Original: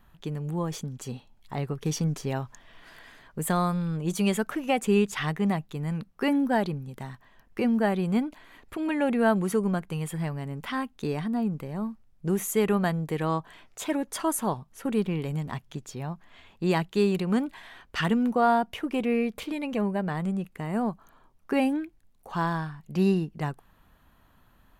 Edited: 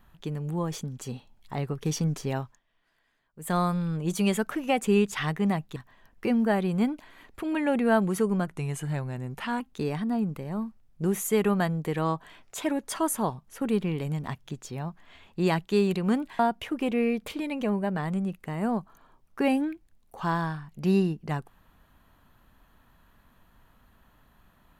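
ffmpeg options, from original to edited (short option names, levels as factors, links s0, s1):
-filter_complex "[0:a]asplit=7[s0][s1][s2][s3][s4][s5][s6];[s0]atrim=end=2.65,asetpts=PTS-STARTPTS,afade=t=out:st=2.4:d=0.25:c=qua:silence=0.0794328[s7];[s1]atrim=start=2.65:end=3.3,asetpts=PTS-STARTPTS,volume=0.0794[s8];[s2]atrim=start=3.3:end=5.762,asetpts=PTS-STARTPTS,afade=t=in:d=0.25:c=qua:silence=0.0794328[s9];[s3]atrim=start=7.098:end=9.814[s10];[s4]atrim=start=9.81:end=10.84,asetpts=PTS-STARTPTS,asetrate=40131,aresample=44100,atrim=end_sample=49915,asetpts=PTS-STARTPTS[s11];[s5]atrim=start=10.836:end=17.632[s12];[s6]atrim=start=18.508[s13];[s7][s8][s9]concat=n=3:v=0:a=1[s14];[s14][s10]acrossfade=d=0.004:c1=hsin:c2=hsin[s15];[s15][s11]acrossfade=d=0.004:c1=hsin:c2=hsin[s16];[s16][s12]acrossfade=d=0.004:c1=hsin:c2=hsin[s17];[s17][s13]acrossfade=d=0.004:c1=hsin:c2=hsin"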